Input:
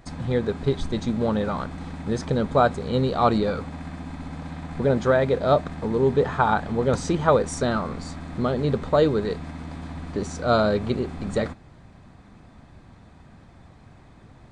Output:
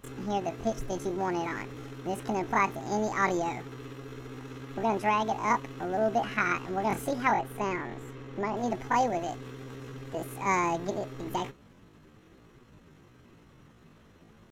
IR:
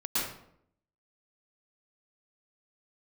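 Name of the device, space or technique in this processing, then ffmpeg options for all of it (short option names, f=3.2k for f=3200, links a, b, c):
chipmunk voice: -filter_complex "[0:a]asetrate=72056,aresample=44100,atempo=0.612027,asettb=1/sr,asplit=3[a][b][c];[a]atrim=end=7.314[d];[b]atrim=start=7.31:end=8.57,asetpts=PTS-STARTPTS,afade=t=in:d=0.004:c=qsin,afade=t=out:st=1.256:d=0.004:c=qsin,lowpass=f=3k:p=1[e];[c]atrim=start=8.566[f];[d][e]acrossfade=d=0.004:c1=hsin:c2=qsin[g];[g][f]acrossfade=d=0.004:c1=qsin:c2=hsin,volume=-7dB"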